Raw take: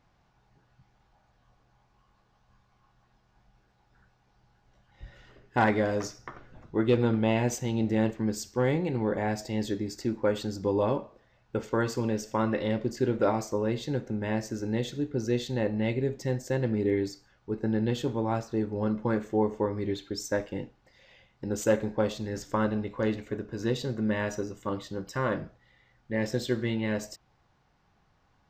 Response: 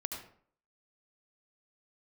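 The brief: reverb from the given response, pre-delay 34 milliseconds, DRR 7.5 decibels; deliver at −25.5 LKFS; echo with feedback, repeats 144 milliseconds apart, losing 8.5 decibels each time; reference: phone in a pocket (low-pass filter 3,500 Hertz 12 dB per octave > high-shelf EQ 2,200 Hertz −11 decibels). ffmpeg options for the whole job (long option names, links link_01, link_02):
-filter_complex "[0:a]aecho=1:1:144|288|432|576:0.376|0.143|0.0543|0.0206,asplit=2[link_01][link_02];[1:a]atrim=start_sample=2205,adelay=34[link_03];[link_02][link_03]afir=irnorm=-1:irlink=0,volume=-8.5dB[link_04];[link_01][link_04]amix=inputs=2:normalize=0,lowpass=3500,highshelf=frequency=2200:gain=-11,volume=3.5dB"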